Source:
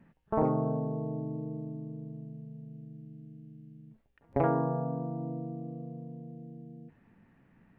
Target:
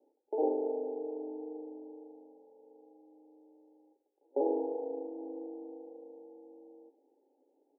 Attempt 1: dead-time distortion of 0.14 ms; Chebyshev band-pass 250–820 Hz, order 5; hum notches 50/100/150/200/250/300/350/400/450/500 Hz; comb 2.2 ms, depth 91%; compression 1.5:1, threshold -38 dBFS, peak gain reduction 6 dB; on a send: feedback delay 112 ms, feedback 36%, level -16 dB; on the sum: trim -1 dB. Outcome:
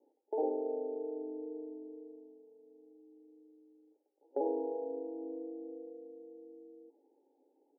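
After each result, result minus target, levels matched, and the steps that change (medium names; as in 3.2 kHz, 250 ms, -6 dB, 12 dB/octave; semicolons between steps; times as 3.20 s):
dead-time distortion: distortion -14 dB; compression: peak gain reduction +6 dB
change: dead-time distortion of 0.42 ms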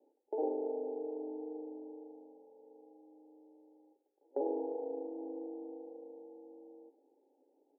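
compression: peak gain reduction +5 dB
remove: compression 1.5:1, threshold -38 dBFS, peak gain reduction 5 dB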